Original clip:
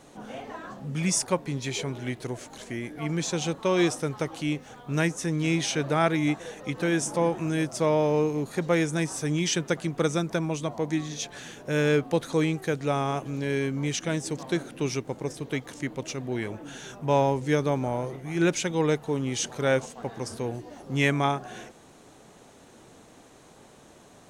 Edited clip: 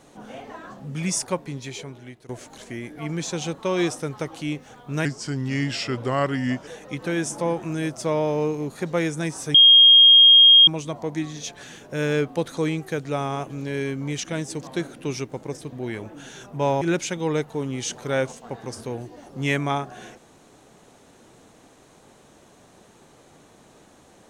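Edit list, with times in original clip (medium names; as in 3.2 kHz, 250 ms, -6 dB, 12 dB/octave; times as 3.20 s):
1.30–2.29 s: fade out, to -15.5 dB
5.05–6.43 s: speed 85%
9.30–10.43 s: bleep 3.24 kHz -8 dBFS
15.48–16.21 s: delete
17.30–18.35 s: delete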